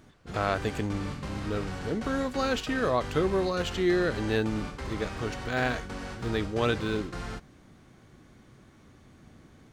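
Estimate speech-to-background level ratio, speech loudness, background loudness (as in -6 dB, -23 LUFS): 8.0 dB, -30.5 LUFS, -38.5 LUFS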